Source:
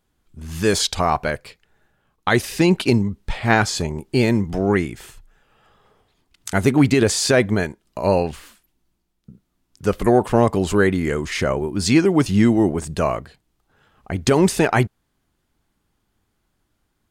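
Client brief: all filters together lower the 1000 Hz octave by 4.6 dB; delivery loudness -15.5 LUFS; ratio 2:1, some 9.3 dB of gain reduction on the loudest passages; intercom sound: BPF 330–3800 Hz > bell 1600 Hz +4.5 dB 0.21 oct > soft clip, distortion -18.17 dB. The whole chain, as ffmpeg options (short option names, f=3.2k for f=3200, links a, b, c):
-af "equalizer=f=1k:t=o:g=-6.5,acompressor=threshold=-28dB:ratio=2,highpass=330,lowpass=3.8k,equalizer=f=1.6k:t=o:w=0.21:g=4.5,asoftclip=threshold=-18.5dB,volume=16.5dB"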